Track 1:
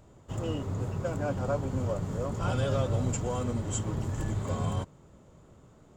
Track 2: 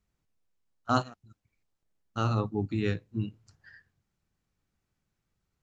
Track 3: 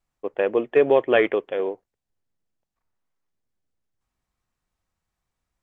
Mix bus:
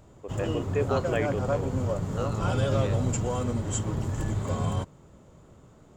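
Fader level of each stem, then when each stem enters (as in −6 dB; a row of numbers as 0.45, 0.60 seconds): +2.5, −6.5, −11.0 decibels; 0.00, 0.00, 0.00 seconds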